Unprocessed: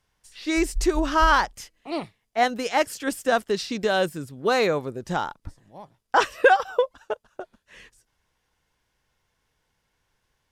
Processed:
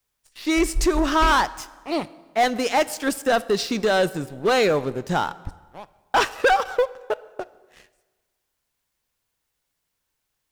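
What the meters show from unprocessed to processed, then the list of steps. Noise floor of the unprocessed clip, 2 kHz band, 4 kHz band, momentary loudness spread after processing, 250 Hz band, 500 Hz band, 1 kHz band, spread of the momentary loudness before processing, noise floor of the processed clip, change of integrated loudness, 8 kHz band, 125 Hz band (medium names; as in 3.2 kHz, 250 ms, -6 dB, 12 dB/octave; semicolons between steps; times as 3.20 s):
-75 dBFS, +0.5 dB, +3.0 dB, 12 LU, +3.5 dB, +2.0 dB, +1.0 dB, 15 LU, -78 dBFS, +1.5 dB, +4.0 dB, +3.0 dB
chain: waveshaping leveller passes 3; plate-style reverb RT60 1.4 s, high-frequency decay 0.75×, DRR 17 dB; word length cut 12-bit, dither triangular; trim -6.5 dB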